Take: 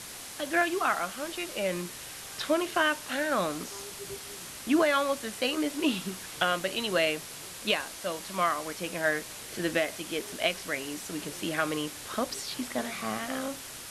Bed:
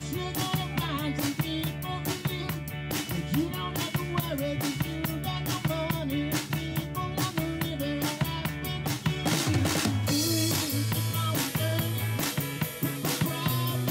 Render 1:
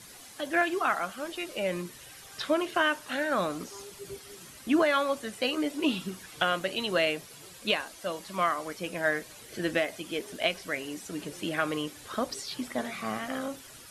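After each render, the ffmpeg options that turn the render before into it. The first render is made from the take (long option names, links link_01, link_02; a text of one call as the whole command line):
ffmpeg -i in.wav -af "afftdn=noise_reduction=10:noise_floor=-43" out.wav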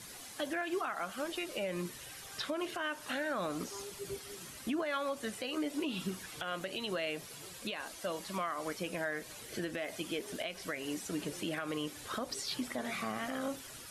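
ffmpeg -i in.wav -af "acompressor=threshold=-28dB:ratio=6,alimiter=level_in=2.5dB:limit=-24dB:level=0:latency=1:release=158,volume=-2.5dB" out.wav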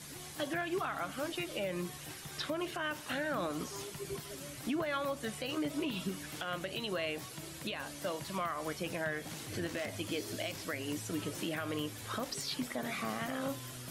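ffmpeg -i in.wav -i bed.wav -filter_complex "[1:a]volume=-19.5dB[link_01];[0:a][link_01]amix=inputs=2:normalize=0" out.wav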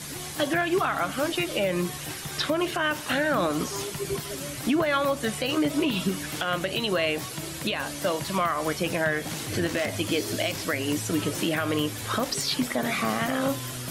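ffmpeg -i in.wav -af "volume=11dB" out.wav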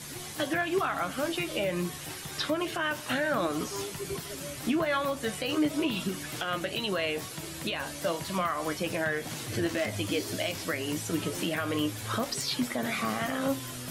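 ffmpeg -i in.wav -af "flanger=delay=8:depth=4.7:regen=57:speed=0.32:shape=triangular" out.wav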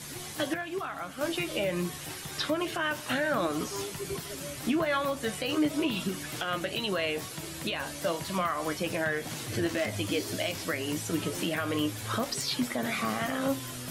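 ffmpeg -i in.wav -filter_complex "[0:a]asplit=3[link_01][link_02][link_03];[link_01]atrim=end=0.542[link_04];[link_02]atrim=start=0.538:end=1.212,asetpts=PTS-STARTPTS,volume=-6.5dB[link_05];[link_03]atrim=start=1.208[link_06];[link_04][link_05]acrossfade=duration=0.004:curve1=hsin:curve2=hsin[link_07];[link_07][link_06]acrossfade=duration=0.004:curve1=hsin:curve2=hsin" out.wav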